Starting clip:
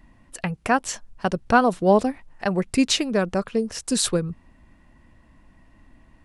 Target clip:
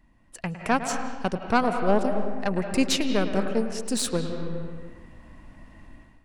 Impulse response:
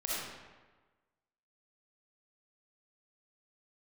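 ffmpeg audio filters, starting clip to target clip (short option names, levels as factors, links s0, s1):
-filter_complex "[0:a]aeval=exprs='0.596*(cos(1*acos(clip(val(0)/0.596,-1,1)))-cos(1*PI/2))+0.0841*(cos(4*acos(clip(val(0)/0.596,-1,1)))-cos(4*PI/2))':c=same,asplit=2[s0][s1];[1:a]atrim=start_sample=2205,lowpass=3600,adelay=107[s2];[s1][s2]afir=irnorm=-1:irlink=0,volume=0.316[s3];[s0][s3]amix=inputs=2:normalize=0,dynaudnorm=f=150:g=5:m=4.47,volume=0.398"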